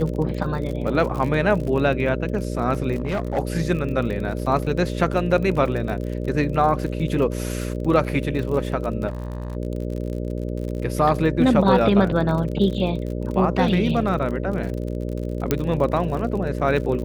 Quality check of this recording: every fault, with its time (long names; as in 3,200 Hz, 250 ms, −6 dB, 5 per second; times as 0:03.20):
mains buzz 60 Hz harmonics 10 −27 dBFS
surface crackle 48 per second −29 dBFS
0:02.95–0:03.39: clipping −19.5 dBFS
0:09.07–0:09.57: clipping −25 dBFS
0:15.51: click −5 dBFS